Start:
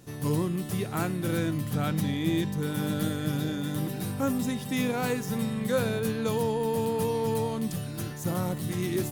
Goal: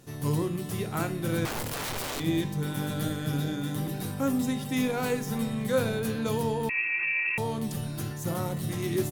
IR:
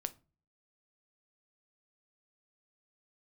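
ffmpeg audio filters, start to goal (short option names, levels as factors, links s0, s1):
-filter_complex "[0:a]bandreject=f=60:t=h:w=6,bandreject=f=120:t=h:w=6,bandreject=f=180:t=h:w=6,bandreject=f=240:t=h:w=6,bandreject=f=300:t=h:w=6,asettb=1/sr,asplit=3[s0][s1][s2];[s0]atrim=end=1.454[s3];[s1]atrim=start=1.45:end=2.2,asetpts=PTS-STARTPTS,afade=t=in:d=0.004:c=qsin,afade=t=out:st=0.746:d=0.004:c=qsin,aeval=exprs='(mod(26.6*val(0)+1,2)-1)/26.6':c=same[s4];[s2]atrim=start=2.196[s5];[s3][s4]acrossfade=d=0.004:c1=hsin:c2=qsin[s6];[s6][s5]acrossfade=d=0.004:c1=qsin:c2=hsin,aecho=1:1:368:0.0841[s7];[1:a]atrim=start_sample=2205,asetrate=37485,aresample=44100[s8];[s7][s8]afir=irnorm=-1:irlink=0,asettb=1/sr,asplit=3[s9][s10][s11];[s9]atrim=end=6.694[s12];[s10]atrim=start=6.69:end=7.38,asetpts=PTS-STARTPTS,afade=t=in:d=0.004:c=qsin,afade=t=out:st=0.686:d=0.004:c=qsin,lowpass=f=2400:t=q:w=0.5098,lowpass=f=2400:t=q:w=0.6013,lowpass=f=2400:t=q:w=0.9,lowpass=f=2400:t=q:w=2.563,afreqshift=-2800[s13];[s11]atrim=start=7.376[s14];[s12][s13]acrossfade=d=0.004:c1=hsin:c2=qsin[s15];[s15][s14]acrossfade=d=0.004:c1=qsin:c2=hsin"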